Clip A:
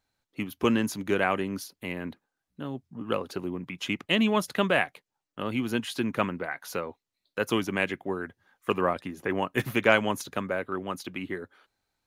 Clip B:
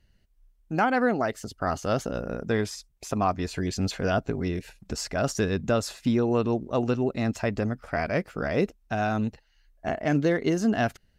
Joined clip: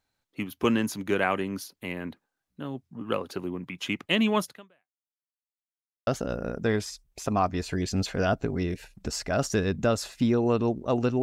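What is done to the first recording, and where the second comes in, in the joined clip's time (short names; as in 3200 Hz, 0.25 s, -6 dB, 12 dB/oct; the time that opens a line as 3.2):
clip A
4.44–5.17 fade out exponential
5.17–6.07 mute
6.07 switch to clip B from 1.92 s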